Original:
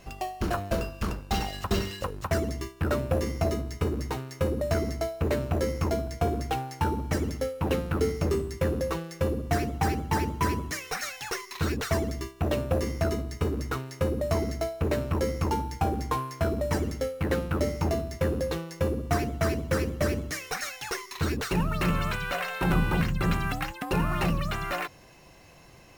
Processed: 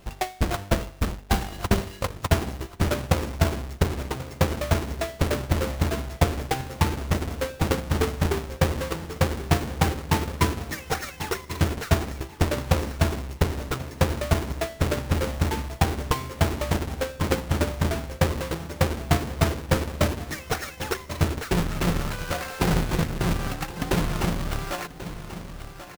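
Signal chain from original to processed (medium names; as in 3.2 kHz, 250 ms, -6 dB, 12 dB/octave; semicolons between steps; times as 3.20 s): square wave that keeps the level; feedback delay 1087 ms, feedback 43%, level -11.5 dB; transient shaper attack +8 dB, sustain -4 dB; trim -5 dB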